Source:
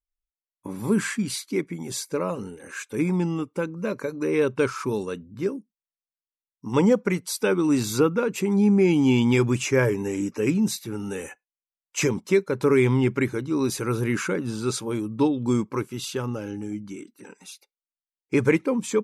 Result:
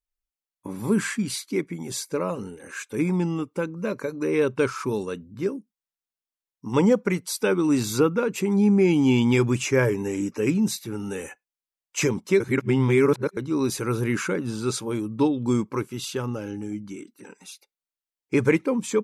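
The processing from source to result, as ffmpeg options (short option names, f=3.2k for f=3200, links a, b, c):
-filter_complex "[0:a]asplit=3[a][b][c];[a]atrim=end=12.402[d];[b]atrim=start=12.398:end=13.372,asetpts=PTS-STARTPTS,areverse[e];[c]atrim=start=13.368[f];[d][e]acrossfade=d=0.004:c1=hsin:c2=hsin[g];[g][f]acrossfade=d=0.004:c1=hsin:c2=hsin"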